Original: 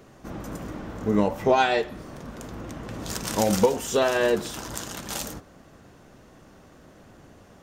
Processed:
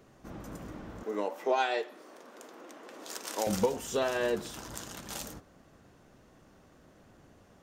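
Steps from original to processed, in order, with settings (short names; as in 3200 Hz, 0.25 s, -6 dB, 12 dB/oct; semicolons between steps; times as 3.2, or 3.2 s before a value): 1.03–3.47 HPF 320 Hz 24 dB/oct; gain -8 dB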